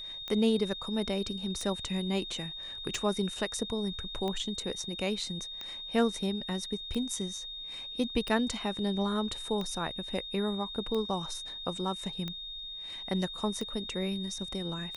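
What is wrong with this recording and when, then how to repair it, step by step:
tick 45 rpm -23 dBFS
whine 3.7 kHz -39 dBFS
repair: de-click; band-stop 3.7 kHz, Q 30

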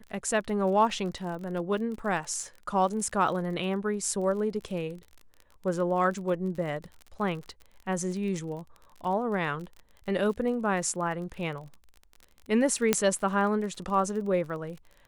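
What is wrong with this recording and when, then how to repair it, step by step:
crackle 37 per s -37 dBFS
12.93 s: pop -6 dBFS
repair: de-click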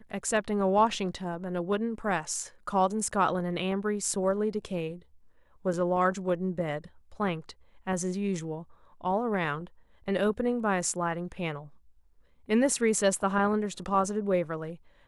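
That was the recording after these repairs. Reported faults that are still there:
nothing left

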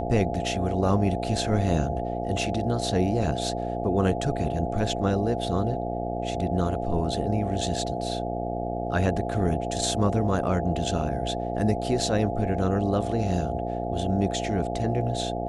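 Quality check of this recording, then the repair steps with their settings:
buzz 60 Hz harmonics 14 -31 dBFS
whine 690 Hz -32 dBFS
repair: band-stop 690 Hz, Q 30; de-hum 60 Hz, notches 14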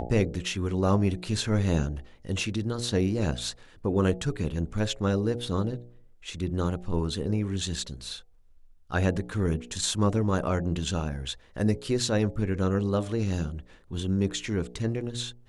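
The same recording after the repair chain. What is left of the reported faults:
nothing left

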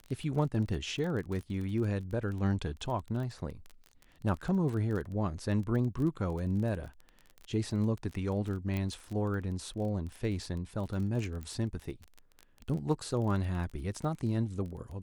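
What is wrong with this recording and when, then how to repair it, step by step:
crackle 24 per s -37 dBFS
8.77 s: pop -22 dBFS
11.43 s: pop -29 dBFS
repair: de-click

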